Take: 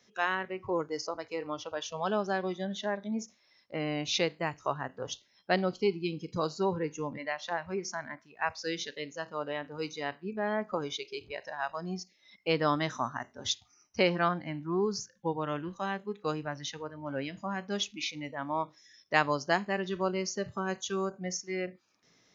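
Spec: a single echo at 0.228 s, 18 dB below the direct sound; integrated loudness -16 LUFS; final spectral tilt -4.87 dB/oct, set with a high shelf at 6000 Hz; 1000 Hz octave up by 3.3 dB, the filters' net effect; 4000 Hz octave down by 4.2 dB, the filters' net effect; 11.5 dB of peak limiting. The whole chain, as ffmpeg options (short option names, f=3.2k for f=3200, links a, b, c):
-af "equalizer=f=1k:t=o:g=4.5,equalizer=f=4k:t=o:g=-4,highshelf=f=6k:g=-5,alimiter=limit=-20.5dB:level=0:latency=1,aecho=1:1:228:0.126,volume=18.5dB"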